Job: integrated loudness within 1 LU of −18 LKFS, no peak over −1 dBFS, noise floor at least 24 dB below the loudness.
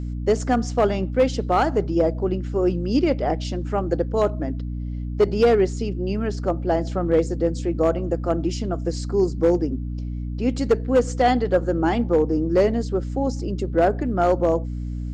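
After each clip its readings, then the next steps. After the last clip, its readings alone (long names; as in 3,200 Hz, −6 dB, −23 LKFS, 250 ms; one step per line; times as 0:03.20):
share of clipped samples 0.4%; peaks flattened at −10.5 dBFS; mains hum 60 Hz; hum harmonics up to 300 Hz; level of the hum −26 dBFS; integrated loudness −22.5 LKFS; sample peak −10.5 dBFS; target loudness −18.0 LKFS
→ clipped peaks rebuilt −10.5 dBFS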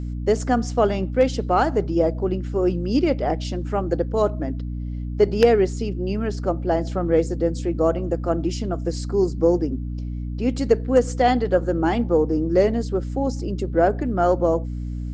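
share of clipped samples 0.0%; mains hum 60 Hz; hum harmonics up to 300 Hz; level of the hum −26 dBFS
→ mains-hum notches 60/120/180/240/300 Hz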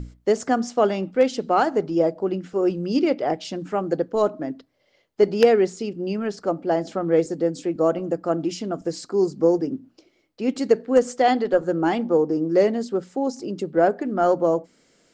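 mains hum none found; integrated loudness −22.5 LKFS; sample peak −1.5 dBFS; target loudness −18.0 LKFS
→ level +4.5 dB
brickwall limiter −1 dBFS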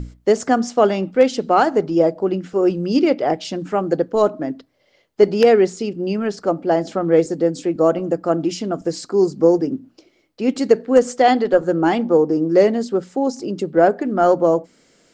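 integrated loudness −18.0 LKFS; sample peak −1.0 dBFS; background noise floor −59 dBFS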